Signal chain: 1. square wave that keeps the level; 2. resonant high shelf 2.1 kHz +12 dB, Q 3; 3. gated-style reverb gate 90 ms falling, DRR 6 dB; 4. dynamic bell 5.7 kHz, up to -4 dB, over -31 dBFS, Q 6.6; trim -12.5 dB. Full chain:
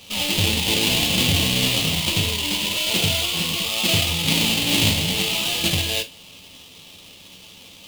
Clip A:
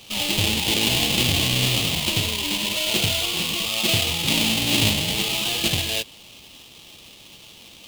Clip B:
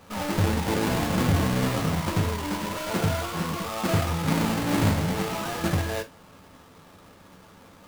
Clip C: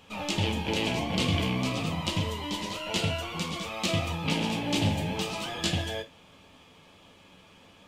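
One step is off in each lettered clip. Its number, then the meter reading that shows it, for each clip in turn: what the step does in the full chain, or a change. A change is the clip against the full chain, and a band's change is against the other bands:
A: 3, loudness change -1.0 LU; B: 2, 4 kHz band -17.5 dB; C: 1, distortion -5 dB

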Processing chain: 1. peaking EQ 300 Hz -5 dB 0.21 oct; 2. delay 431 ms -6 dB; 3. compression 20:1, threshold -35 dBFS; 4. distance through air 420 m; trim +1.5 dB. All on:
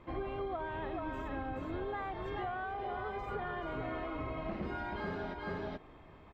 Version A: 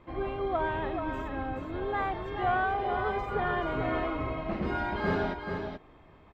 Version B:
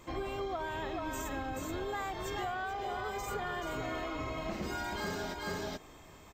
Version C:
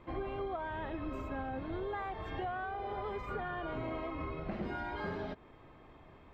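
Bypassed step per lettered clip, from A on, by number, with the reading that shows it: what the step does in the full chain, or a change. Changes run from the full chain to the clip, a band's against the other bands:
3, mean gain reduction 6.0 dB; 4, 4 kHz band +8.5 dB; 2, momentary loudness spread change +11 LU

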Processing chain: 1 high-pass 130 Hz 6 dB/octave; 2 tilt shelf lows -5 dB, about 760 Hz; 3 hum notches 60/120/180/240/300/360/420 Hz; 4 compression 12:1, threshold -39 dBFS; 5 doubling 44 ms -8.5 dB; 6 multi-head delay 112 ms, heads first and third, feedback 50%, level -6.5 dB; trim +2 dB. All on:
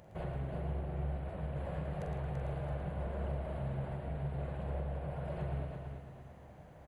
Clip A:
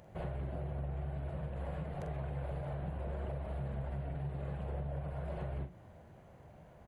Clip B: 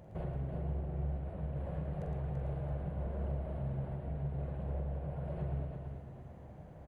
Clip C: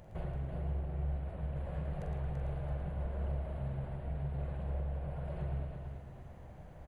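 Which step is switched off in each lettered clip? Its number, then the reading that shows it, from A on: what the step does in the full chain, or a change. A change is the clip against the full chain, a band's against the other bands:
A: 6, echo-to-direct -2.0 dB to none; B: 2, 2 kHz band -6.0 dB; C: 1, 125 Hz band +4.5 dB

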